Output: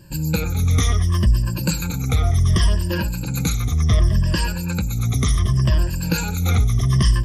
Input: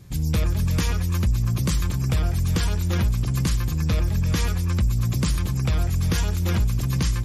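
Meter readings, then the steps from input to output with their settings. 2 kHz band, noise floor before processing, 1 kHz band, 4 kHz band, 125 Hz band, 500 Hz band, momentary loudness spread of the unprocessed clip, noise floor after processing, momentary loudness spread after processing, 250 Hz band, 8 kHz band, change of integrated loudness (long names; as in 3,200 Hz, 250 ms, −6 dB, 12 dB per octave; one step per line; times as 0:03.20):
+4.5 dB, −25 dBFS, +4.5 dB, +4.5 dB, +3.5 dB, +4.0 dB, 1 LU, −26 dBFS, 6 LU, +3.0 dB, +4.5 dB, +3.5 dB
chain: rippled gain that drifts along the octave scale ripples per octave 1.3, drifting −0.68 Hz, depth 20 dB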